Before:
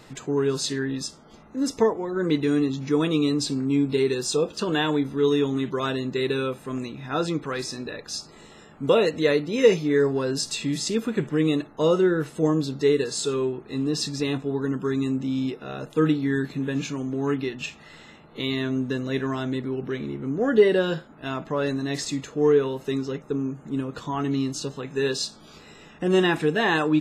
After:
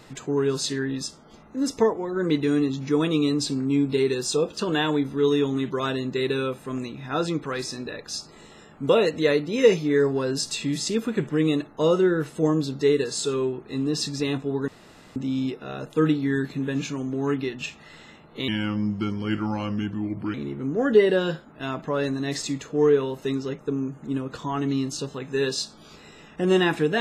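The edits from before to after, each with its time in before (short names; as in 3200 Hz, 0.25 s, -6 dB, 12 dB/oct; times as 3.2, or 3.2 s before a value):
14.68–15.16 room tone
18.48–19.97 speed 80%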